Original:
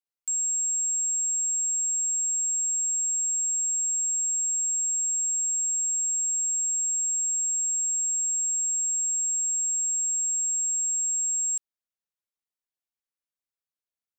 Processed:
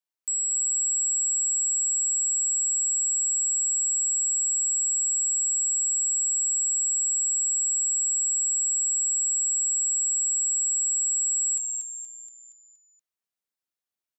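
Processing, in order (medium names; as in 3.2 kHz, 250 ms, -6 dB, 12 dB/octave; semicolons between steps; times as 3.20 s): frequency shift +160 Hz; frequency-shifting echo 236 ms, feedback 49%, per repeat -120 Hz, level -5 dB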